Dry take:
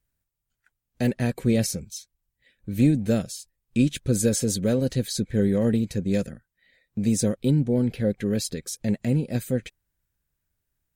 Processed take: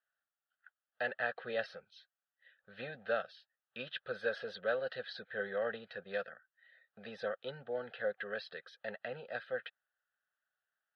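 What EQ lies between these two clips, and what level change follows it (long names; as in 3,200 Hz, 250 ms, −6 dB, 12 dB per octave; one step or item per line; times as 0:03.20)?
four-pole ladder band-pass 1,600 Hz, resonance 20%
high-frequency loss of the air 310 metres
phaser with its sweep stopped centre 1,500 Hz, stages 8
+17.5 dB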